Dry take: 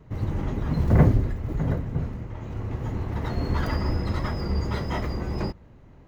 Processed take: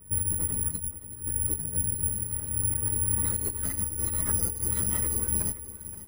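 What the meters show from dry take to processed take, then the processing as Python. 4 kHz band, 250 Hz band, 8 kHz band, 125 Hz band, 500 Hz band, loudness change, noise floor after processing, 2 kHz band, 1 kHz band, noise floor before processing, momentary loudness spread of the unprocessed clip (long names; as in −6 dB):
−9.0 dB, −12.0 dB, can't be measured, −10.0 dB, −12.0 dB, +0.5 dB, −43 dBFS, −10.0 dB, −13.5 dB, −50 dBFS, 13 LU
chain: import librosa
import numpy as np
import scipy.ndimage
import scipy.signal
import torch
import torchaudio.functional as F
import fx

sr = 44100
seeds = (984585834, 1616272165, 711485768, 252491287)

p1 = fx.peak_eq(x, sr, hz=760.0, db=-7.5, octaves=0.77)
p2 = fx.over_compress(p1, sr, threshold_db=-28.0, ratio=-0.5)
p3 = fx.chorus_voices(p2, sr, voices=4, hz=0.9, base_ms=11, depth_ms=1.4, mix_pct=45)
p4 = p3 + fx.echo_feedback(p3, sr, ms=523, feedback_pct=32, wet_db=-14.0, dry=0)
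p5 = (np.kron(scipy.signal.resample_poly(p4, 1, 4), np.eye(4)[0]) * 4)[:len(p4)]
y = p5 * librosa.db_to_amplitude(-6.0)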